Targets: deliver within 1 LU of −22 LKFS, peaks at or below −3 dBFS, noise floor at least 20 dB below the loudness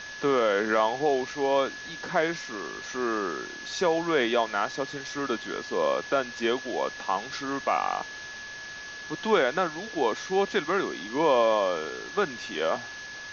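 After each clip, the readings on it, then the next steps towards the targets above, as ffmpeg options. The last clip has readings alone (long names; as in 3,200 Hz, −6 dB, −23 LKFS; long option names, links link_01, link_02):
interfering tone 1,700 Hz; level of the tone −39 dBFS; background noise floor −40 dBFS; target noise floor −48 dBFS; integrated loudness −27.5 LKFS; sample peak −11.0 dBFS; target loudness −22.0 LKFS
→ -af "bandreject=frequency=1700:width=30"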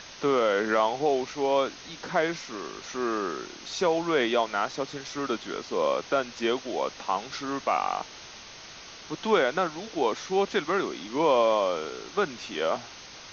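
interfering tone none found; background noise floor −45 dBFS; target noise floor −48 dBFS
→ -af "afftdn=noise_reduction=6:noise_floor=-45"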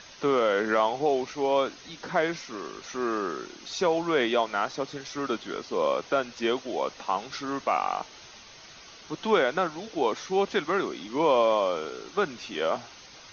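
background noise floor −49 dBFS; integrated loudness −28.0 LKFS; sample peak −11.0 dBFS; target loudness −22.0 LKFS
→ -af "volume=6dB"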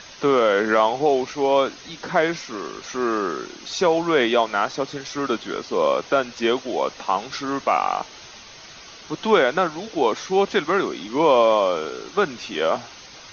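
integrated loudness −22.0 LKFS; sample peak −5.0 dBFS; background noise floor −43 dBFS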